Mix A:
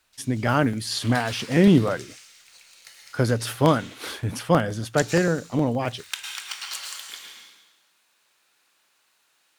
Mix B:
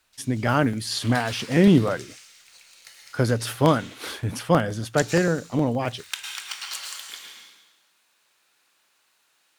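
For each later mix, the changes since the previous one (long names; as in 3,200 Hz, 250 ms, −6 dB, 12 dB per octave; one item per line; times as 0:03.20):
nothing changed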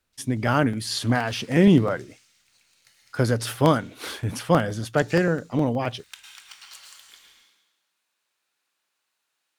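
background −11.5 dB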